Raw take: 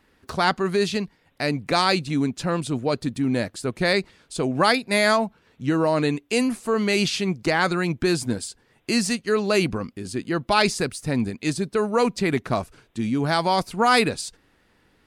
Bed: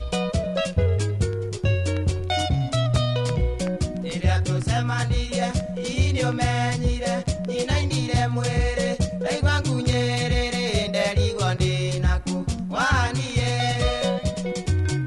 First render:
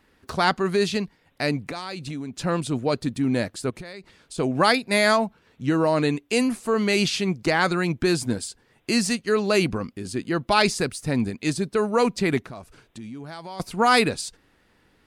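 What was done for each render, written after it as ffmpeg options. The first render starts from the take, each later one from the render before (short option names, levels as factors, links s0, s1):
-filter_complex "[0:a]asettb=1/sr,asplit=3[s0][s1][s2];[s0]atrim=end=1.674[s3];[s1]atrim=start=1.67:end=2.42,asetpts=PTS-STARTPTS,afade=t=in:d=0.004:c=qsin,afade=t=out:st=0.746:d=0.004:c=qsin,acompressor=threshold=0.0398:ratio=12:attack=3.2:release=140:knee=1:detection=peak[s4];[s2]atrim=start=2.416[s5];[s3][s4]acrossfade=d=0.004:c1=hsin:c2=qsin[s6];[s6][s5]acrossfade=d=0.004:c1=qsin:c2=hsin,asettb=1/sr,asplit=3[s7][s8][s9];[s7]atrim=end=3.704[s10];[s8]atrim=start=3.7:end=4.38,asetpts=PTS-STARTPTS,afade=t=in:d=0.004:c=qsin,afade=t=out:st=0.676:d=0.004:c=qsin,acompressor=threshold=0.02:ratio=16:attack=3.2:release=140:knee=1:detection=peak[s11];[s9]atrim=start=4.376[s12];[s10][s11]acrossfade=d=0.004:c1=hsin:c2=qsin[s13];[s13][s12]acrossfade=d=0.004:c1=qsin:c2=hsin,asettb=1/sr,asplit=3[s14][s15][s16];[s14]atrim=end=12.404[s17];[s15]atrim=start=12.4:end=13.6,asetpts=PTS-STARTPTS,afade=t=in:d=0.004:c=qsin,afade=t=out:st=1.196:d=0.004:c=qsin,acompressor=threshold=0.0112:ratio=3:attack=3.2:release=140:knee=1:detection=peak[s18];[s16]atrim=start=13.596[s19];[s17][s18]acrossfade=d=0.004:c1=hsin:c2=qsin[s20];[s20][s19]acrossfade=d=0.004:c1=qsin:c2=hsin"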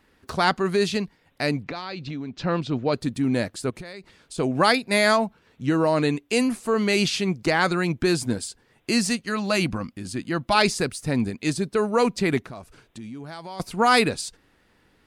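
-filter_complex "[0:a]asettb=1/sr,asplit=3[s0][s1][s2];[s0]atrim=end=1.634[s3];[s1]atrim=start=1.63:end=2.94,asetpts=PTS-STARTPTS,afade=t=in:d=0.004:c=qsin,afade=t=out:st=1.306:d=0.004:c=qsin,lowpass=f=5000:w=0.5412,lowpass=f=5000:w=1.3066[s4];[s2]atrim=start=2.936[s5];[s3][s4]acrossfade=d=0.004:c1=hsin:c2=qsin[s6];[s6][s5]acrossfade=d=0.004:c1=qsin:c2=hsin,asettb=1/sr,asplit=3[s7][s8][s9];[s7]atrim=end=9.264[s10];[s8]atrim=start=9.26:end=10.55,asetpts=PTS-STARTPTS,afade=t=in:d=0.004:c=qsin,afade=t=out:st=1.286:d=0.004:c=qsin,equalizer=f=420:t=o:w=0.24:g=-14[s11];[s9]atrim=start=10.546[s12];[s10][s11]acrossfade=d=0.004:c1=hsin:c2=qsin[s13];[s13][s12]acrossfade=d=0.004:c1=qsin:c2=hsin"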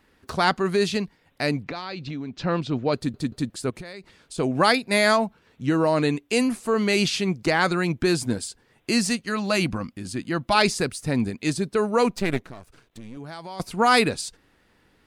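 -filter_complex "[0:a]asettb=1/sr,asplit=3[s0][s1][s2];[s0]atrim=end=12.104[s3];[s1]atrim=start=12.1:end=13.17,asetpts=PTS-STARTPTS,afade=t=in:d=0.004:c=qsin,afade=t=out:st=1.066:d=0.004:c=qsin,aeval=exprs='if(lt(val(0),0),0.251*val(0),val(0))':c=same[s4];[s2]atrim=start=13.166[s5];[s3][s4]acrossfade=d=0.004:c1=hsin:c2=qsin[s6];[s6][s5]acrossfade=d=0.004:c1=qsin:c2=hsin,asplit=4[s7][s8][s9][s10];[s7]atrim=end=3.142[s11];[s8]atrim=start=2.958:end=3.142[s12];[s9]atrim=start=2.958:end=3.142[s13];[s10]atrim=start=3.498[s14];[s11][s12]acrossfade=d=0.004:c1=hsin:c2=hsin[s15];[s15][s13]acrossfade=d=0.004:c1=hsin:c2=hsin[s16];[s16][s14]acrossfade=d=0.004:c1=hsin:c2=hsin"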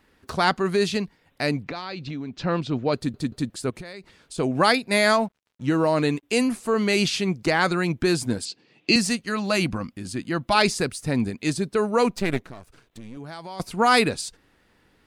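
-filter_complex "[0:a]asettb=1/sr,asplit=3[s0][s1][s2];[s0]atrim=end=5.124[s3];[s1]atrim=start=5.12:end=6.23,asetpts=PTS-STARTPTS,afade=t=in:d=0.004:c=qsin,afade=t=out:st=1.106:d=0.004:c=qsin,aeval=exprs='sgn(val(0))*max(abs(val(0))-0.00224,0)':c=same[s4];[s2]atrim=start=6.226[s5];[s3][s4]acrossfade=d=0.004:c1=hsin:c2=qsin[s6];[s6][s5]acrossfade=d=0.004:c1=qsin:c2=hsin,asettb=1/sr,asplit=3[s7][s8][s9];[s7]atrim=end=8.454[s10];[s8]atrim=start=8.45:end=8.96,asetpts=PTS-STARTPTS,afade=t=in:d=0.004:c=qsin,afade=t=out:st=0.506:d=0.004:c=qsin,highpass=f=130:w=0.5412,highpass=f=130:w=1.3066,equalizer=f=170:t=q:w=4:g=6,equalizer=f=310:t=q:w=4:g=8,equalizer=f=970:t=q:w=4:g=-4,equalizer=f=1500:t=q:w=4:g=-7,equalizer=f=2600:t=q:w=4:g=10,equalizer=f=4400:t=q:w=4:g=9,lowpass=f=6600:w=0.5412,lowpass=f=6600:w=1.3066[s11];[s9]atrim=start=8.956[s12];[s10][s11]acrossfade=d=0.004:c1=hsin:c2=qsin[s13];[s13][s12]acrossfade=d=0.004:c1=qsin:c2=hsin"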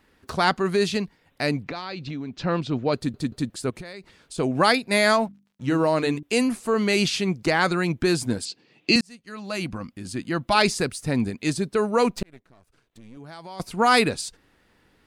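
-filter_complex "[0:a]asettb=1/sr,asplit=3[s0][s1][s2];[s0]atrim=end=5.254[s3];[s1]atrim=start=5.25:end=6.23,asetpts=PTS-STARTPTS,afade=t=in:d=0.004:c=qsin,afade=t=out:st=0.976:d=0.004:c=qsin,bandreject=f=50:t=h:w=6,bandreject=f=100:t=h:w=6,bandreject=f=150:t=h:w=6,bandreject=f=200:t=h:w=6,bandreject=f=250:t=h:w=6,bandreject=f=300:t=h:w=6,bandreject=f=350:t=h:w=6[s4];[s2]atrim=start=6.226[s5];[s3][s4]acrossfade=d=0.004:c1=hsin:c2=qsin[s6];[s6][s5]acrossfade=d=0.004:c1=qsin:c2=hsin,asplit=3[s7][s8][s9];[s7]atrim=end=9.01,asetpts=PTS-STARTPTS,afade=t=out:st=9.006:d=0.004:c=hsin[s10];[s8]atrim=start=9.01:end=12.23,asetpts=PTS-STARTPTS,afade=t=in:d=1.22,afade=t=out:st=3.216:d=0.004:c=hsin[s11];[s9]atrim=start=12.23,asetpts=PTS-STARTPTS,afade=t=in:d=1.63[s12];[s10][s11][s12]concat=n=3:v=0:a=1"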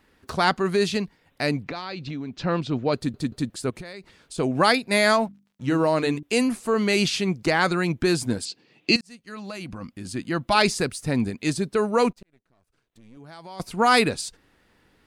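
-filter_complex "[0:a]asplit=3[s0][s1][s2];[s0]afade=t=out:st=8.95:d=0.02[s3];[s1]acompressor=threshold=0.0316:ratio=10:attack=3.2:release=140:knee=1:detection=peak,afade=t=in:st=8.95:d=0.02,afade=t=out:st=9.81:d=0.02[s4];[s2]afade=t=in:st=9.81:d=0.02[s5];[s3][s4][s5]amix=inputs=3:normalize=0,asplit=2[s6][s7];[s6]atrim=end=12.13,asetpts=PTS-STARTPTS,afade=t=out:st=12.126:d=0.004:c=hsin:silence=0.0668344[s8];[s7]atrim=start=12.13,asetpts=PTS-STARTPTS,afade=t=in:d=1.59:silence=0.0668344[s9];[s8][s9]concat=n=2:v=0:a=1"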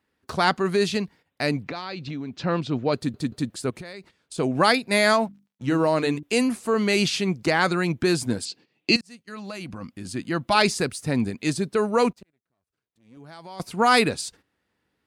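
-af "agate=range=0.224:threshold=0.00398:ratio=16:detection=peak,highpass=65"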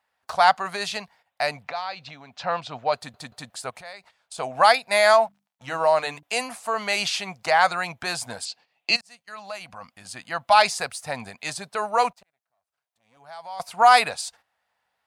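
-af "lowshelf=f=490:t=q:w=3:g=-13"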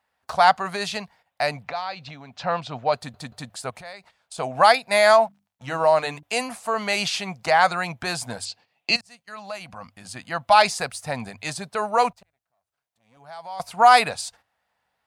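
-af "lowshelf=f=330:g=8,bandreject=f=50:t=h:w=6,bandreject=f=100:t=h:w=6"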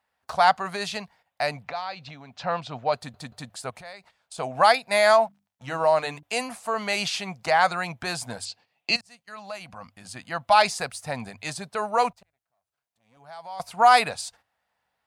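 -af "volume=0.75"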